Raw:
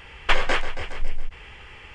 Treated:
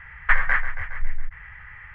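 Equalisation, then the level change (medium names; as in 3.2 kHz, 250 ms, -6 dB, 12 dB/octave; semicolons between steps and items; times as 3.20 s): FFT filter 160 Hz 0 dB, 260 Hz -28 dB, 1.9 kHz +9 dB, 2.7 kHz -15 dB, 5.6 kHz -28 dB; 0.0 dB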